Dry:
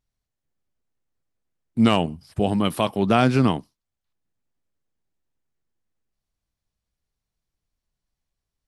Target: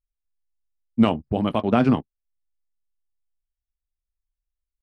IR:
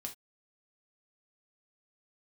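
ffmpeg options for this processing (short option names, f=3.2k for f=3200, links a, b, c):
-filter_complex "[0:a]lowpass=f=1.9k:p=1,asplit=2[a][b];[1:a]atrim=start_sample=2205[c];[b][c]afir=irnorm=-1:irlink=0,volume=-1.5dB[d];[a][d]amix=inputs=2:normalize=0,anlmdn=2.51,atempo=1.8,volume=-3.5dB"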